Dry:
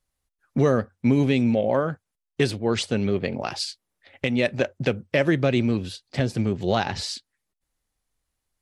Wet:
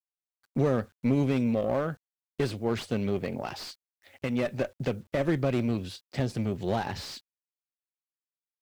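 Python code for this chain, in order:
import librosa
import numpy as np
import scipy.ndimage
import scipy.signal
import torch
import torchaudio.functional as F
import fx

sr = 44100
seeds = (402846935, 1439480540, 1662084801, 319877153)

y = fx.diode_clip(x, sr, knee_db=-16.5)
y = fx.quant_dither(y, sr, seeds[0], bits=10, dither='none')
y = fx.slew_limit(y, sr, full_power_hz=82.0)
y = y * 10.0 ** (-4.0 / 20.0)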